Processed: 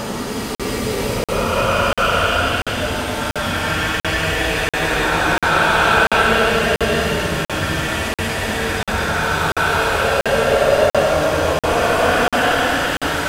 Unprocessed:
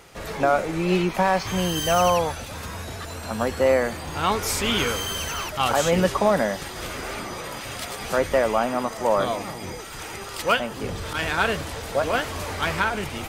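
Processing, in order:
echo with a time of its own for lows and highs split 330 Hz, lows 235 ms, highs 445 ms, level −4 dB
extreme stretch with random phases 8.6×, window 0.25 s, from 0:10.73
regular buffer underruns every 0.69 s, samples 2,048, zero, from 0:00.55
level +6.5 dB

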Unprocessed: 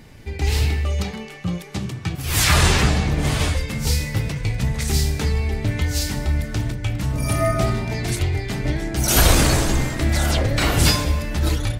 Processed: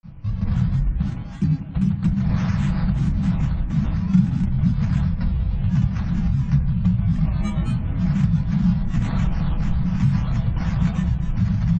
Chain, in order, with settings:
elliptic band-stop filter 200–430 Hz
sample-rate reduction 2,800 Hz, jitter 0%
Chebyshev low-pass with heavy ripple 4,500 Hz, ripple 3 dB
granular cloud 144 ms, grains 27 per second, spray 35 ms, pitch spread up and down by 12 semitones
downward compressor 5 to 1, threshold −31 dBFS, peak gain reduction 14.5 dB
low shelf with overshoot 270 Hz +12.5 dB, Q 3
comb filter 6.1 ms, depth 30%
feedback echo with a low-pass in the loop 88 ms, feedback 83%, low-pass 1,600 Hz, level −14.5 dB

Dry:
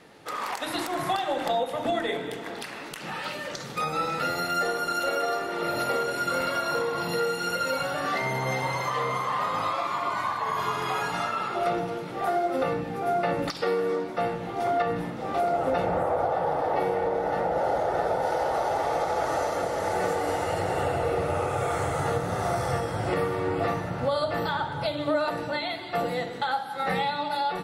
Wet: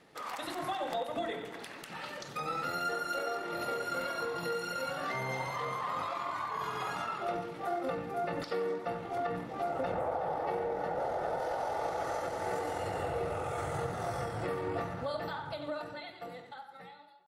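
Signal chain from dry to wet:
fade-out on the ending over 3.95 s
tempo change 1.6×
feedback echo with a band-pass in the loop 90 ms, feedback 43%, band-pass 1,300 Hz, level −8 dB
level −8 dB

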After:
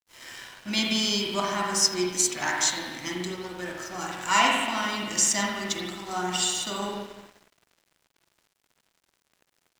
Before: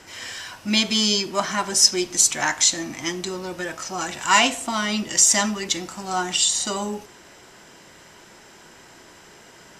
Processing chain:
bit reduction 9 bits
spring reverb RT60 1.5 s, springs 44/50 ms, chirp 45 ms, DRR −2 dB
dead-zone distortion −37.5 dBFS
level −6.5 dB

